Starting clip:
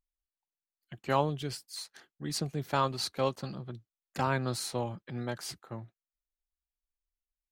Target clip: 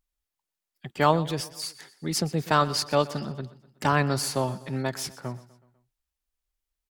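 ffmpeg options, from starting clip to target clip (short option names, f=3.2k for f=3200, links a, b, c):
-af "aecho=1:1:135|270|405|540:0.119|0.063|0.0334|0.0177,asetrate=48000,aresample=44100,volume=7dB"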